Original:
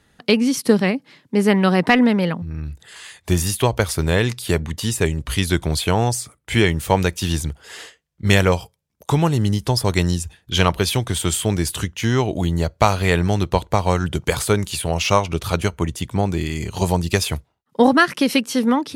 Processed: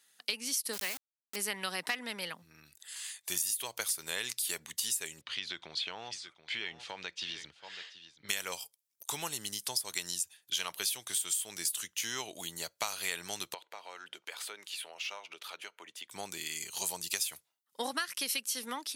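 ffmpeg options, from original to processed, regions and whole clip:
-filter_complex "[0:a]asettb=1/sr,asplit=3[s0][s1][s2];[s0]atrim=end=0.734[s3];[s1]atrim=start=0.73:end=1.36,asetpts=PTS-STARTPTS,afade=t=in:d=0.004:c=qsin,afade=t=out:st=0.626:d=0.004:c=qsin,lowshelf=f=170:g=-5.5,aeval=exprs='val(0)*gte(abs(val(0)),0.0562)':c=same[s4];[s2]atrim=start=1.356[s5];[s3][s4]acrossfade=d=0.004:c1=hsin:c2=qsin[s6];[s6][s5]acrossfade=d=0.004:c1=qsin:c2=hsin,asettb=1/sr,asplit=3[s7][s8][s9];[s7]atrim=end=5.214[s10];[s8]atrim=start=5.21:end=8.29,asetpts=PTS-STARTPTS,afade=t=in:d=0.004:c=qsin,afade=t=out:st=3.076:d=0.004:c=qsin,lowpass=f=4100:w=0.5412,lowpass=f=4100:w=1.3066,aecho=1:1:728:0.15,atrim=end_sample=135828,acompressor=threshold=0.126:ratio=6:attack=3.2:release=140:knee=1:detection=peak[s11];[s9]atrim=start=8.286[s12];[s10][s11]acrossfade=d=0.004:c1=hsin:c2=qsin[s13];[s13][s12]acrossfade=d=0.004:c1=qsin:c2=hsin,asettb=1/sr,asplit=3[s14][s15][s16];[s14]atrim=end=13.544[s17];[s15]atrim=start=13.54:end=16.1,asetpts=PTS-STARTPTS,afade=t=in:d=0.004:c=qsin,afade=t=out:st=2.556:d=0.004:c=qsin,acrossover=split=270 3700:gain=0.0794 1 0.1[s18][s19][s20];[s18][s19][s20]amix=inputs=3:normalize=0,bandreject=f=1100:w=21,acompressor=threshold=0.0282:ratio=2:attack=3.2:release=140:knee=1:detection=peak[s21];[s16]atrim=start=16.096[s22];[s17][s21]acrossfade=d=0.004:c1=hsin:c2=qsin[s23];[s23][s22]acrossfade=d=0.004:c1=qsin:c2=hsin,highpass=110,aderivative,acompressor=threshold=0.0282:ratio=6,volume=1.12"

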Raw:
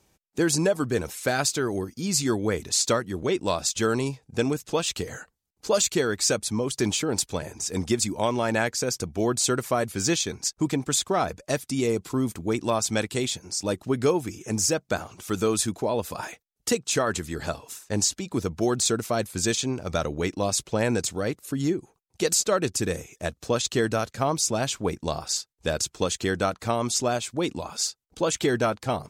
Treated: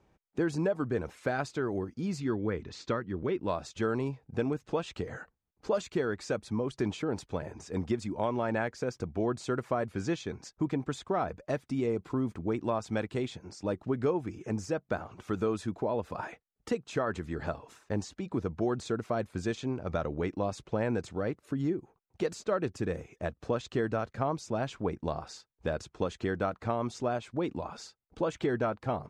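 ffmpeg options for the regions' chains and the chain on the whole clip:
-filter_complex "[0:a]asettb=1/sr,asplit=3[s0][s1][s2];[s0]atrim=end=2.204[s3];[s1]atrim=start=2.2:end=3.49,asetpts=PTS-STARTPTS,afade=t=in:d=0.004:c=qsin,afade=t=out:st=1.286:d=0.004:c=qsin,lowpass=4600,equalizer=f=690:w=1.9:g=-6.5[s4];[s2]atrim=start=3.486[s5];[s3][s4]acrossfade=d=0.004:c1=hsin:c2=qsin[s6];[s6][s5]acrossfade=d=0.004:c1=qsin:c2=hsin,acompressor=threshold=0.0178:ratio=1.5,lowpass=1600,aemphasis=mode=production:type=50fm"

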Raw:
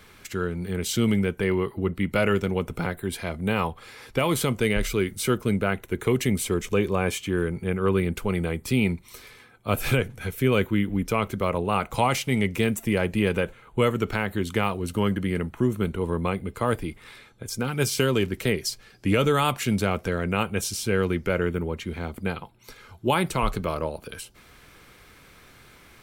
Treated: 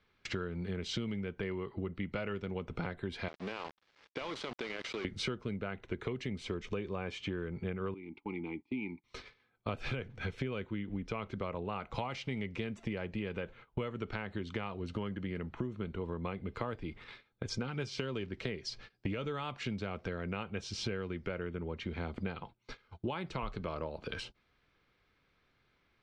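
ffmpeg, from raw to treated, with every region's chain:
-filter_complex "[0:a]asettb=1/sr,asplit=3[s0][s1][s2];[s0]atrim=end=3.284[s3];[s1]atrim=start=3.28:end=5.05,asetpts=PTS-STARTPTS,afade=t=in:d=0.004:c=qsin,afade=t=out:st=1.766:d=0.004:c=qsin,highpass=330,acompressor=threshold=0.0178:ratio=12:attack=3.2:release=140:knee=1:detection=peak,aeval=exprs='val(0)*gte(abs(val(0)),0.00944)':c=same[s4];[s2]atrim=start=5.046[s5];[s3][s4]acrossfade=d=0.004:c1=hsin:c2=qsin[s6];[s6][s5]acrossfade=d=0.004:c1=qsin:c2=hsin,asettb=1/sr,asplit=3[s7][s8][s9];[s7]atrim=end=7.944[s10];[s8]atrim=start=7.94:end=9.04,asetpts=PTS-STARTPTS,afade=t=in:d=0.004:c=qsin,afade=t=out:st=1.096:d=0.004:c=qsin,asplit=3[s11][s12][s13];[s11]bandpass=f=300:t=q:w=8,volume=1[s14];[s12]bandpass=f=870:t=q:w=8,volume=0.501[s15];[s13]bandpass=f=2240:t=q:w=8,volume=0.355[s16];[s14][s15][s16]amix=inputs=3:normalize=0,highshelf=f=6500:t=q:w=1.5:g=-11[s17];[s9]atrim=start=9.036[s18];[s10][s17]acrossfade=d=0.004:c1=hsin:c2=qsin[s19];[s19][s18]acrossfade=d=0.004:c1=qsin:c2=hsin,agate=range=0.0708:threshold=0.00631:ratio=16:detection=peak,lowpass=f=4900:w=0.5412,lowpass=f=4900:w=1.3066,acompressor=threshold=0.0178:ratio=16,volume=1.19"

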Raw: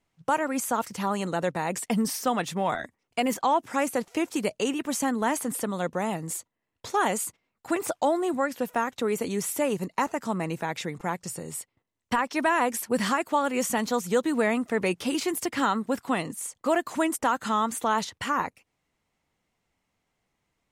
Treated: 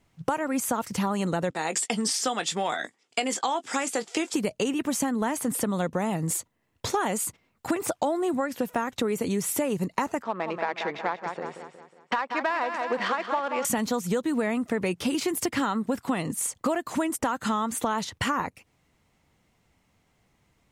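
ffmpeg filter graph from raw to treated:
-filter_complex "[0:a]asettb=1/sr,asplit=3[s0][s1][s2];[s0]atrim=end=1.504[s3];[s1]atrim=start=1.5:end=4.34,asetpts=PTS-STARTPTS,afade=t=in:d=0.004:c=qsin,afade=t=out:st=2.836:d=0.004:c=qsin,highpass=380,equalizer=f=580:t=q:w=4:g=-5,equalizer=f=1000:t=q:w=4:g=-5,equalizer=f=3400:t=q:w=4:g=6,equalizer=f=4900:t=q:w=4:g=6,equalizer=f=7400:t=q:w=4:g=8,lowpass=f=10000:w=0.5412,lowpass=f=10000:w=1.3066,asplit=2[s4][s5];[s5]adelay=19,volume=0.251[s6];[s4][s6]amix=inputs=2:normalize=0,atrim=end_sample=125244[s7];[s2]atrim=start=4.336[s8];[s3][s7]acrossfade=d=0.004:c1=hsin:c2=qsin[s9];[s9][s8]acrossfade=d=0.004:c1=qsin:c2=hsin,asettb=1/sr,asplit=3[s10][s11][s12];[s10]atrim=end=10.224[s13];[s11]atrim=start=10.22:end=13.65,asetpts=PTS-STARTPTS,afade=t=in:d=0.004:c=qsin,afade=t=out:st=3.426:d=0.004:c=qsin,adynamicsmooth=sensitivity=2.5:basefreq=1900,highpass=540,lowpass=5800,aecho=1:1:182|364|546|728|910:0.355|0.16|0.0718|0.0323|0.0145,atrim=end_sample=151263[s14];[s12]atrim=start=13.646[s15];[s13][s14]acrossfade=d=0.004:c1=hsin:c2=qsin[s16];[s16][s15]acrossfade=d=0.004:c1=qsin:c2=hsin,equalizer=f=91:t=o:w=2.8:g=6,acompressor=threshold=0.0251:ratio=6,volume=2.51"

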